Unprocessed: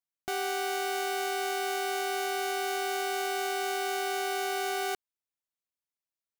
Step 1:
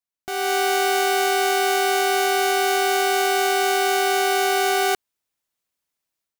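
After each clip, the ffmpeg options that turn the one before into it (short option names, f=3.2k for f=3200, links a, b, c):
-af "dynaudnorm=f=270:g=3:m=11.5dB"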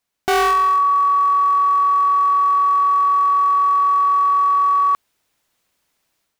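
-af "aeval=exprs='0.251*sin(PI/2*3.98*val(0)/0.251)':c=same,highshelf=f=5.6k:g=-6"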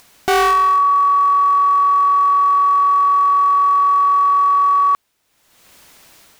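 -af "acompressor=mode=upward:threshold=-31dB:ratio=2.5,volume=2dB"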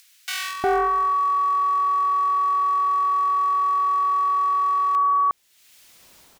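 -filter_complex "[0:a]acrossover=split=1700[a][b];[a]adelay=360[c];[c][b]amix=inputs=2:normalize=0,volume=-4dB"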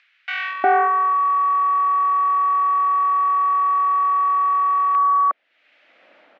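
-af "highpass=f=290:w=0.5412,highpass=f=290:w=1.3066,equalizer=f=400:t=q:w=4:g=-10,equalizer=f=590:t=q:w=4:g=6,equalizer=f=1k:t=q:w=4:g=-10,lowpass=f=2.4k:w=0.5412,lowpass=f=2.4k:w=1.3066,volume=7.5dB"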